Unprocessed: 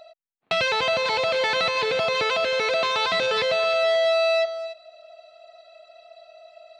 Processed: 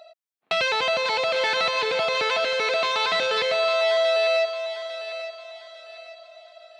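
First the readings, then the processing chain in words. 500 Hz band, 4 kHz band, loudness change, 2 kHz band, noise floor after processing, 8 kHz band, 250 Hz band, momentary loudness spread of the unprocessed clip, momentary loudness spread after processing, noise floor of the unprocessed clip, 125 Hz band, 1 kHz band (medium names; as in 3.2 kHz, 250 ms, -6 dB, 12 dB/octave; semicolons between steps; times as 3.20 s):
-0.5 dB, +0.5 dB, -0.5 dB, 0.0 dB, -71 dBFS, +0.5 dB, -4.0 dB, 4 LU, 20 LU, -69 dBFS, no reading, 0.0 dB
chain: high-pass 290 Hz 6 dB/octave; thinning echo 851 ms, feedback 37%, high-pass 620 Hz, level -10 dB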